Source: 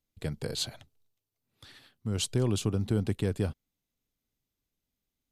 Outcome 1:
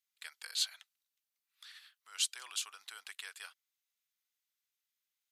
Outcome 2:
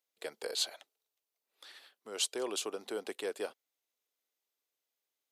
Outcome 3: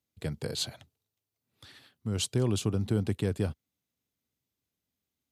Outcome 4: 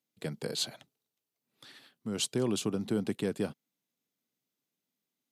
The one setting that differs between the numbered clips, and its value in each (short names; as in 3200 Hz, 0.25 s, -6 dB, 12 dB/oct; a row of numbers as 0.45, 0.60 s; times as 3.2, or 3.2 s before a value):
HPF, cutoff: 1300, 430, 65, 160 Hz